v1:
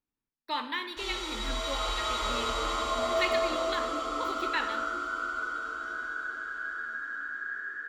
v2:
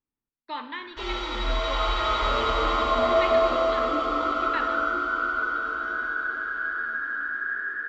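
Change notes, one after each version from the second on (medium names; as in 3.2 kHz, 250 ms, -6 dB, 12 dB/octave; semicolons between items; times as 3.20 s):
background +8.5 dB; master: add distance through air 220 m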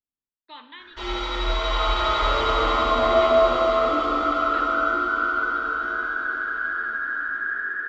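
speech: add four-pole ladder low-pass 4.1 kHz, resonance 55%; background: send +11.5 dB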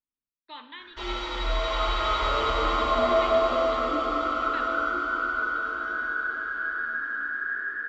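background: send off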